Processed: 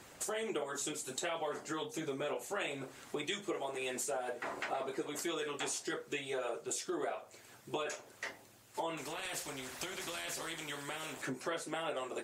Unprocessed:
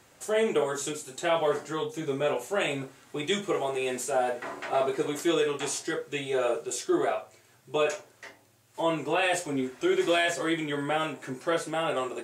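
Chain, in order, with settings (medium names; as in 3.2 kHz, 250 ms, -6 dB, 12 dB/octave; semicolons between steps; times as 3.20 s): harmonic-percussive split harmonic -10 dB; compression 4:1, threshold -44 dBFS, peak gain reduction 16 dB; 8.97–11.22 s: spectrum-flattening compressor 2:1; trim +6.5 dB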